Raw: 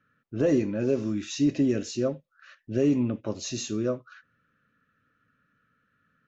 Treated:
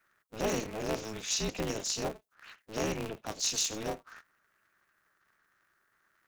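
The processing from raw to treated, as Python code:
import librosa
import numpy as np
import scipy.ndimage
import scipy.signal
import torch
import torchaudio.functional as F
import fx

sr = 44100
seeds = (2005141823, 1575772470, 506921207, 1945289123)

y = fx.spec_quant(x, sr, step_db=30)
y = fx.highpass(y, sr, hz=880.0, slope=6)
y = fx.high_shelf(y, sr, hz=4700.0, db=10.5)
y = y * np.sign(np.sin(2.0 * np.pi * 110.0 * np.arange(len(y)) / sr))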